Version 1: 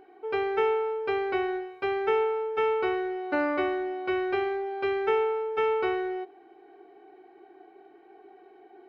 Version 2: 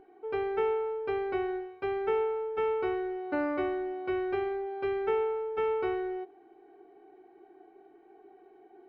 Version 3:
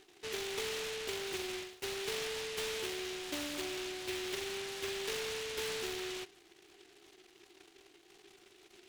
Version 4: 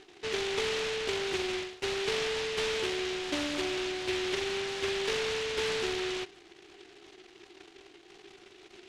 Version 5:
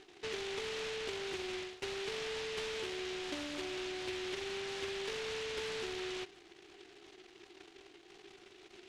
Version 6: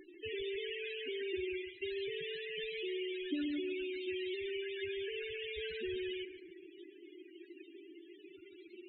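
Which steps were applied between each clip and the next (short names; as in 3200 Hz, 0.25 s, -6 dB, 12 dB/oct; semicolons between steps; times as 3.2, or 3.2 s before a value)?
tilt -2 dB/oct; gain -5.5 dB
compressor 3:1, threshold -32 dBFS, peak gain reduction 6 dB; noise-modulated delay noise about 2700 Hz, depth 0.29 ms; gain -5 dB
air absorption 78 m; gain +8 dB
compressor, threshold -34 dBFS, peak gain reduction 7 dB; gain -3.5 dB
band shelf 680 Hz -10.5 dB; loudest bins only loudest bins 8; analogue delay 0.142 s, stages 2048, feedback 47%, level -8 dB; gain +9 dB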